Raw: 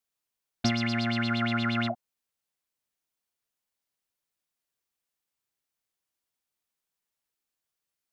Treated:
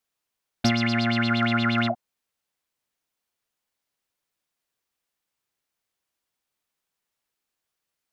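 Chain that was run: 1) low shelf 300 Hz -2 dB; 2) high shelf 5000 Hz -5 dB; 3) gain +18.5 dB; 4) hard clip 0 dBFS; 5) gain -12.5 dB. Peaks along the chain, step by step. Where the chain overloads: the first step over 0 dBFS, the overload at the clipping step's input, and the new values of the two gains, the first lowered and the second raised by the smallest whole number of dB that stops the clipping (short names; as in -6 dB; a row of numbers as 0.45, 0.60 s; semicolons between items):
-14.0, -15.0, +3.5, 0.0, -12.5 dBFS; step 3, 3.5 dB; step 3 +14.5 dB, step 5 -8.5 dB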